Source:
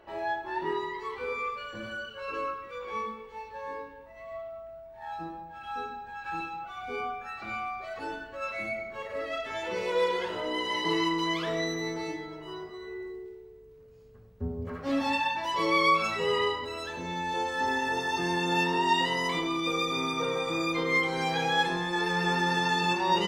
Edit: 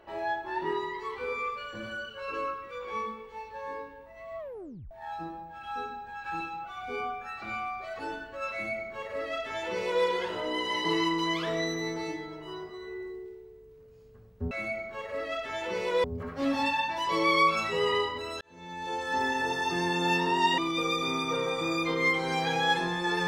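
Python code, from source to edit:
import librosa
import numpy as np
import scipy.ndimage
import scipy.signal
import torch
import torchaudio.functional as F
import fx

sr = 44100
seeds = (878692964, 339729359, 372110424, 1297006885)

y = fx.edit(x, sr, fx.tape_stop(start_s=4.39, length_s=0.52),
    fx.duplicate(start_s=8.52, length_s=1.53, to_s=14.51),
    fx.fade_in_span(start_s=16.88, length_s=0.76),
    fx.cut(start_s=19.05, length_s=0.42), tone=tone)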